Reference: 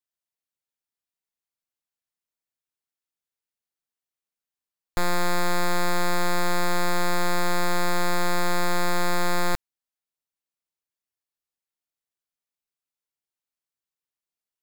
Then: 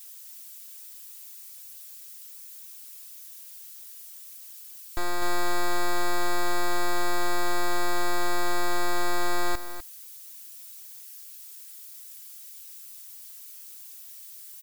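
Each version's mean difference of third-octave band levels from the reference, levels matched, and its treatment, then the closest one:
2.5 dB: spike at every zero crossing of −34 dBFS
comb filter 3.1 ms, depth 92%
on a send: single-tap delay 250 ms −10 dB
on the sum: level −8 dB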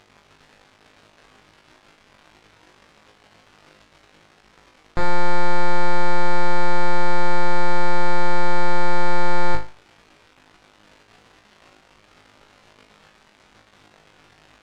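7.0 dB: surface crackle 330 per second −35 dBFS
head-to-tape spacing loss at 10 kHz 22 dB
on a send: flutter between parallel walls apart 3.3 metres, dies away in 0.32 s
on the sum: level +4 dB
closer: first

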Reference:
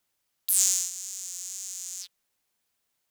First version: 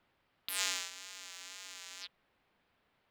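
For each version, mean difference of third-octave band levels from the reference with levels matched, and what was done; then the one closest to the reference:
12.5 dB: high-frequency loss of the air 420 metres
level +12.5 dB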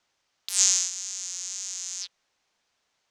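5.5 dB: drawn EQ curve 210 Hz 0 dB, 770 Hz +6 dB, 6,200 Hz +3 dB, 13,000 Hz −24 dB
level +3 dB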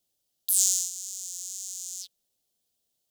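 2.0 dB: flat-topped bell 1,500 Hz −13.5 dB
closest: third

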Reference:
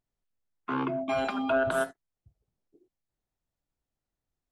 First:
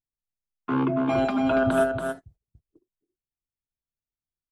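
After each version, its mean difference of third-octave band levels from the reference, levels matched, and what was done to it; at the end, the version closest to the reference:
4.0 dB: low-shelf EQ 450 Hz +10.5 dB
on a send: single-tap delay 282 ms −5 dB
on the sum: noise gate −53 dBFS, range −21 dB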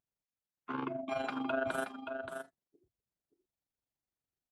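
2.5 dB: high-pass filter 96 Hz 6 dB per octave
amplitude modulation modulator 24 Hz, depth 40%
on a send: single-tap delay 576 ms −7.5 dB
on the sum: level −5 dB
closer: second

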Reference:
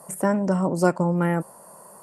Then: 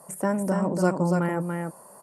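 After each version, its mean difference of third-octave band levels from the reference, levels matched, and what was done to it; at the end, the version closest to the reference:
4.0 dB: single-tap delay 286 ms −4.5 dB
level −3.5 dB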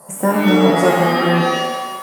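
11.5 dB: reverb with rising layers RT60 1 s, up +7 semitones, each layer −2 dB, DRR −1 dB
level +2.5 dB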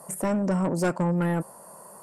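2.5 dB: soft clipping −18 dBFS, distortion −10 dB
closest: third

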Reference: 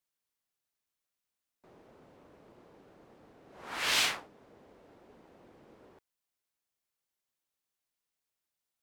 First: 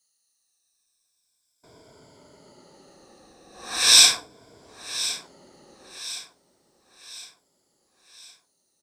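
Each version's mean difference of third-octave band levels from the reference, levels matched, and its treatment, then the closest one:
8.5 dB: rippled gain that drifts along the octave scale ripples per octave 1.7, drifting −0.36 Hz, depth 14 dB
flat-topped bell 6,300 Hz +14.5 dB
repeating echo 1,063 ms, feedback 45%, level −14.5 dB
level +3 dB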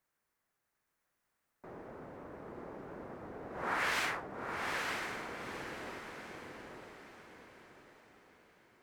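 11.5 dB: high shelf with overshoot 2,400 Hz −8.5 dB, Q 1.5
downward compressor, threshold −41 dBFS, peak gain reduction 12.5 dB
on a send: feedback delay with all-pass diffusion 905 ms, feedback 42%, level −3 dB
on the sum: level +9.5 dB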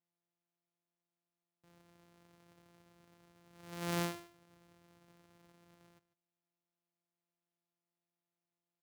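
6.5 dB: samples sorted by size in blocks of 256 samples
high-pass filter 80 Hz
on a send: single-tap delay 148 ms −18 dB
on the sum: level −7 dB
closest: third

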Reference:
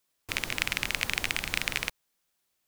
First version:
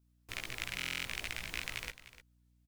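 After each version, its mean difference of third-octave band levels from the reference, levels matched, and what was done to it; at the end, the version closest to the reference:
2.0 dB: multi-voice chorus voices 6, 0.84 Hz, delay 17 ms, depth 1.6 ms
mains hum 60 Hz, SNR 27 dB
single-tap delay 301 ms −15 dB
buffer that repeats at 0:00.77, samples 1,024, times 11
level −7 dB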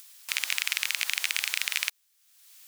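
12.5 dB: high-pass filter 840 Hz 12 dB per octave
tilt shelving filter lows −8.5 dB, about 1,300 Hz
brickwall limiter −7 dBFS, peak gain reduction 7 dB
upward compression, threshold −36 dBFS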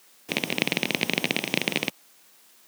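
5.0 dB: lower of the sound and its delayed copy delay 0.33 ms
low-shelf EQ 330 Hz +5.5 dB
in parallel at −10 dB: bit-depth reduction 8 bits, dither triangular
on the sum: high-pass filter 170 Hz 24 dB per octave
level +2 dB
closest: first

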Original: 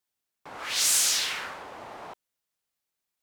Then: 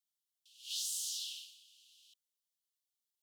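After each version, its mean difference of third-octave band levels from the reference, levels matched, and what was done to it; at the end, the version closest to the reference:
19.5 dB: Butterworth high-pass 2,900 Hz 96 dB per octave
downward compressor 6 to 1, threshold −31 dBFS, peak gain reduction 11 dB
level −5.5 dB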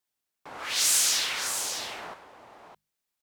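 3.5 dB: mains-hum notches 50/100/150/200 Hz
on a send: single-tap delay 611 ms −8.5 dB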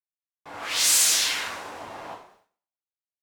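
2.5 dB: coupled-rooms reverb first 0.55 s, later 1.6 s, from −19 dB, DRR −3.5 dB
downward expander −54 dBFS
level −1.5 dB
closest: third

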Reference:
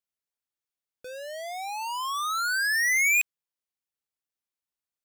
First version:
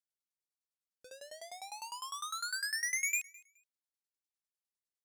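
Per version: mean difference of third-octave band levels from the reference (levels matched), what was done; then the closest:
5.5 dB: flat-topped bell 6,500 Hz +8 dB
shaped tremolo saw down 9.9 Hz, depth 95%
on a send: repeating echo 211 ms, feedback 21%, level −23 dB
on the sum: level −9 dB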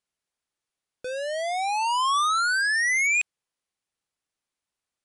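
3.5 dB: high-shelf EQ 4,300 Hz −3.5 dB
in parallel at +1 dB: compressor whose output falls as the input rises −30 dBFS, ratio −0.5
on the sum: MP3 160 kbit/s 24,000 Hz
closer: second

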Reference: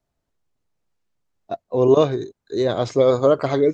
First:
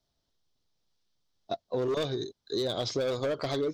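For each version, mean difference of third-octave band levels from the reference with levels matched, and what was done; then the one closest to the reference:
6.0 dB: in parallel at −7 dB: soft clipping −19.5 dBFS, distortion −7 dB
on the sum: flat-topped bell 4,300 Hz +12 dB 1.1 octaves
hard clipping −10.5 dBFS, distortion −14 dB
downward compressor, threshold −21 dBFS, peak gain reduction 8.5 dB
level −6.5 dB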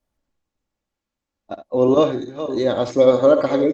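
3.0 dB: delay that plays each chunk backwards 369 ms, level −11.5 dB
comb filter 3.6 ms, depth 52%
ambience of single reflections 63 ms −11.5 dB, 78 ms −16.5 dB
Opus 24 kbit/s 48,000 Hz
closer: second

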